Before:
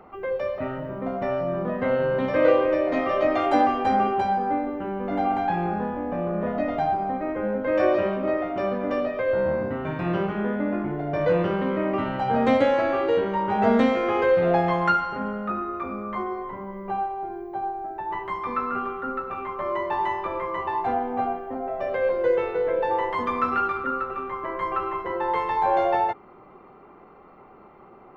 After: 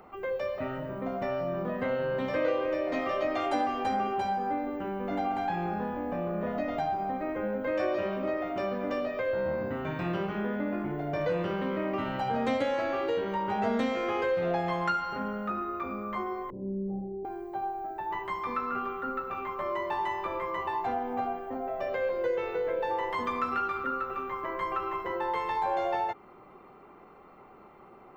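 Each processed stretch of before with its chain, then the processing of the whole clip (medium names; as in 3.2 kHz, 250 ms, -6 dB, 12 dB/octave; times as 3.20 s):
16.50–17.25 s: inverse Chebyshev low-pass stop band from 1.6 kHz, stop band 60 dB + flutter echo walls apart 5.3 m, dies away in 0.76 s
whole clip: treble shelf 4 kHz +11.5 dB; compression 2:1, threshold -25 dBFS; trim -4 dB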